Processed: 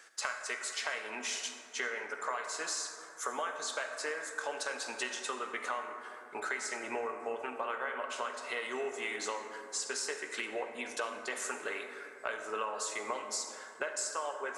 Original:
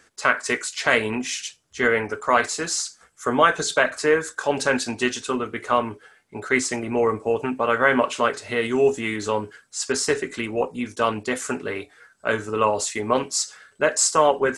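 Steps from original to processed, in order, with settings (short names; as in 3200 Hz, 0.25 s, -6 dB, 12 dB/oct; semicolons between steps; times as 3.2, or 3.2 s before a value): HPF 600 Hz 12 dB/oct; compressor 12:1, threshold -34 dBFS, peak gain reduction 22 dB; reverb RT60 3.1 s, pre-delay 38 ms, DRR 5.5 dB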